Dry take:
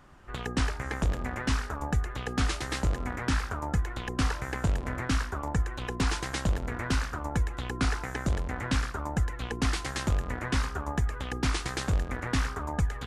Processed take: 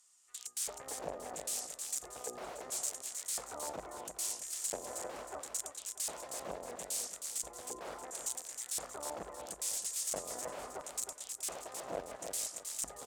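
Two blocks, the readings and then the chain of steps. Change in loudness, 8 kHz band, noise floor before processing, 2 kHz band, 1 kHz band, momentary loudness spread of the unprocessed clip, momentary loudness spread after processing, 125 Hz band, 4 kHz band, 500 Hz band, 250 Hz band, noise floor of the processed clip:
-8.0 dB, +6.0 dB, -39 dBFS, -18.5 dB, -11.0 dB, 2 LU, 7 LU, -32.5 dB, -8.5 dB, -6.0 dB, -21.5 dB, -56 dBFS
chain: tone controls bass -3 dB, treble +13 dB; band-stop 1.6 kHz, Q 6.9; de-hum 63.04 Hz, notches 4; integer overflow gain 24 dB; LFO band-pass square 0.74 Hz 610–7900 Hz; on a send: feedback delay 315 ms, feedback 30%, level -6.5 dB

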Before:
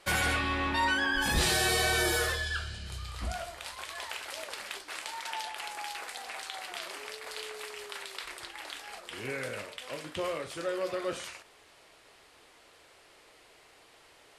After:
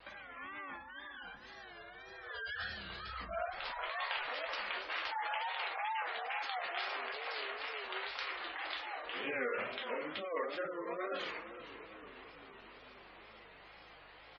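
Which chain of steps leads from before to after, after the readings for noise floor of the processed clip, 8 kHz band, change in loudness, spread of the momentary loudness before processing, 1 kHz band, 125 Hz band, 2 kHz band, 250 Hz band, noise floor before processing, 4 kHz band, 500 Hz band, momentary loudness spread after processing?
-57 dBFS, under -30 dB, -7.0 dB, 15 LU, -4.0 dB, -21.0 dB, -7.0 dB, -11.5 dB, -59 dBFS, -9.0 dB, -5.5 dB, 17 LU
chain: CVSD coder 64 kbps; compressor with a negative ratio -36 dBFS, ratio -0.5; high-pass 1 kHz 6 dB/octave; simulated room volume 220 m³, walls furnished, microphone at 2 m; hum 50 Hz, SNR 34 dB; tape spacing loss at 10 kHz 30 dB; on a send: frequency-shifting echo 461 ms, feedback 63%, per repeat -31 Hz, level -12.5 dB; on the sum: spectral gate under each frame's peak -20 dB strong; wow and flutter 130 cents; treble shelf 5.1 kHz +6 dB; trim +1.5 dB

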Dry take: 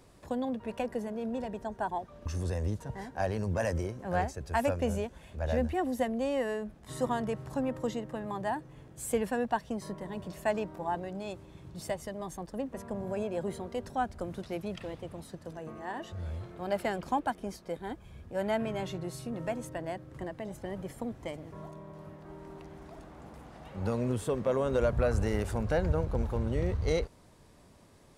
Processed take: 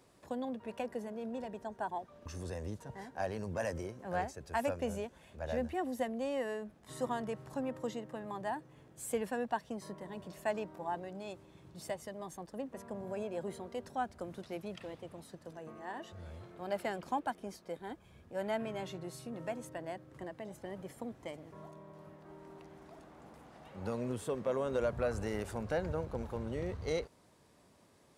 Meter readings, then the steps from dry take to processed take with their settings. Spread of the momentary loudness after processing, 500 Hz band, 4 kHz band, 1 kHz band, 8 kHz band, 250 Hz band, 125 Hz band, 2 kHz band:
14 LU, -5.0 dB, -4.5 dB, -4.5 dB, -4.5 dB, -6.5 dB, -10.0 dB, -4.5 dB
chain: high-pass 170 Hz 6 dB/octave; trim -4.5 dB

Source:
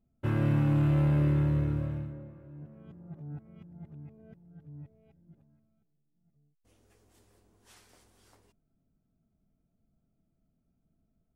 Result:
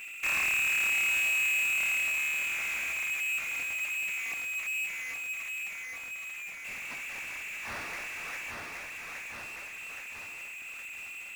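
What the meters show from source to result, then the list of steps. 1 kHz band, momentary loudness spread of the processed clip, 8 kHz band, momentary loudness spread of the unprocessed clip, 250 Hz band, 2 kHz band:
+3.5 dB, 15 LU, no reading, 21 LU, -23.5 dB, +23.5 dB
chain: bass shelf 370 Hz -7.5 dB; in parallel at -2 dB: peak limiter -32.5 dBFS, peak gain reduction 9 dB; on the sum: one-sided clip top -45 dBFS; distance through air 460 m; on a send: thinning echo 820 ms, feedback 48%, high-pass 250 Hz, level -7.5 dB; on the sum: frequency inversion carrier 2.7 kHz; power-law waveshaper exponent 0.35

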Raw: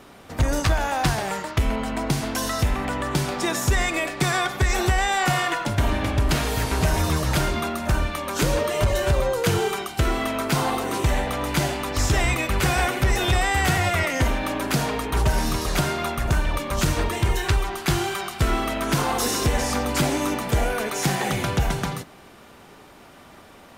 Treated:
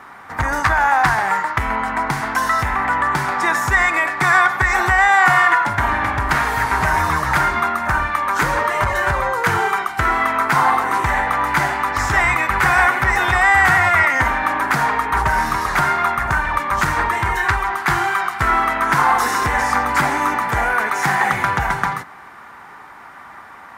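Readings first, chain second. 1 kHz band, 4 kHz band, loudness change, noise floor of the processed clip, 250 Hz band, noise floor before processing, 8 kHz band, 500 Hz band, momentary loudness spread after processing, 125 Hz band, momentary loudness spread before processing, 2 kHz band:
+11.0 dB, -2.0 dB, +6.5 dB, -40 dBFS, -2.5 dB, -47 dBFS, -2.5 dB, -0.5 dB, 6 LU, -3.0 dB, 4 LU, +11.5 dB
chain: high-pass 43 Hz; high-order bell 1.3 kHz +15.5 dB; trim -2.5 dB

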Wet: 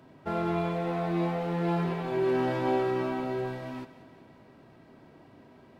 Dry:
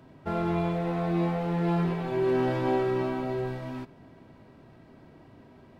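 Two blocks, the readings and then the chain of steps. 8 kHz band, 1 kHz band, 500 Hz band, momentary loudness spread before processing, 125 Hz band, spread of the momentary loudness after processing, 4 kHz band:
no reading, 0.0 dB, -1.0 dB, 9 LU, -3.5 dB, 9 LU, +0.5 dB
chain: bass shelf 110 Hz -9.5 dB; on a send: thinning echo 184 ms, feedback 53%, level -14 dB

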